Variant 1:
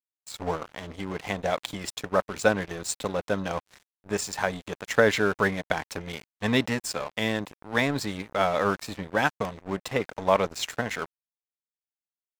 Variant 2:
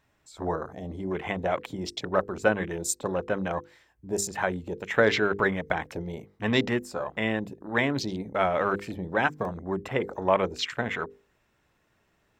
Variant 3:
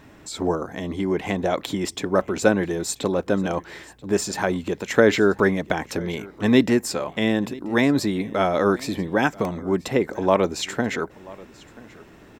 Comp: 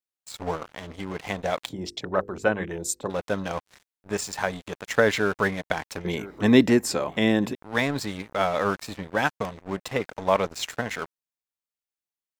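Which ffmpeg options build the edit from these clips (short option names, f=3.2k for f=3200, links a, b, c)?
-filter_complex "[0:a]asplit=3[a][b][c];[a]atrim=end=1.692[d];[1:a]atrim=start=1.688:end=3.102[e];[b]atrim=start=3.098:end=6.052[f];[2:a]atrim=start=6.048:end=7.552[g];[c]atrim=start=7.548[h];[d][e]acrossfade=d=0.004:c1=hsin:c2=hsin[i];[i][f]acrossfade=d=0.004:c1=hsin:c2=hsin[j];[j][g]acrossfade=d=0.004:c1=hsin:c2=hsin[k];[k][h]acrossfade=d=0.004:c1=hsin:c2=hsin"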